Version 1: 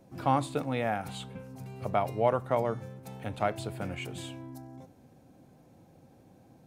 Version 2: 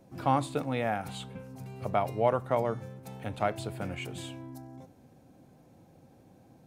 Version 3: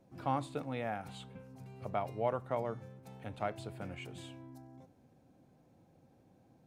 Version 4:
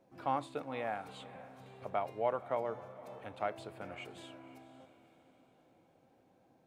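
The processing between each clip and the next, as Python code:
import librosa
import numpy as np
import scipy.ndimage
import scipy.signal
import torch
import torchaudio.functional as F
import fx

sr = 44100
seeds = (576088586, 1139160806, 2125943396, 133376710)

y1 = x
y2 = fx.high_shelf(y1, sr, hz=8000.0, db=-6.5)
y2 = F.gain(torch.from_numpy(y2), -7.5).numpy()
y3 = fx.bass_treble(y2, sr, bass_db=-11, treble_db=-5)
y3 = fx.echo_diffused(y3, sr, ms=513, feedback_pct=44, wet_db=-15.5)
y3 = F.gain(torch.from_numpy(y3), 1.0).numpy()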